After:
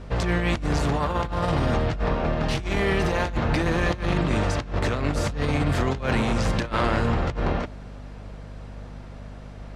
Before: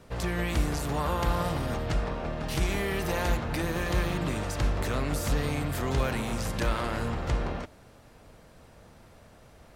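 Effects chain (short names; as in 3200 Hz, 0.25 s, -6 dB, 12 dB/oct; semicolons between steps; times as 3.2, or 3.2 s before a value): air absorption 85 m; negative-ratio compressor -30 dBFS, ratio -0.5; hum 50 Hz, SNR 15 dB; gain +7 dB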